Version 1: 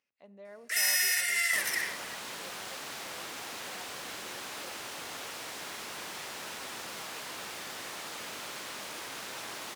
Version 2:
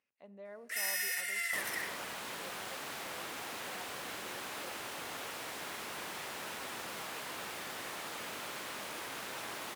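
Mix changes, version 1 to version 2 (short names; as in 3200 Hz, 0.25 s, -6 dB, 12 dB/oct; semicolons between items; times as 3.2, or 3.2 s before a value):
first sound -6.0 dB; master: add bell 5600 Hz -5 dB 1.5 oct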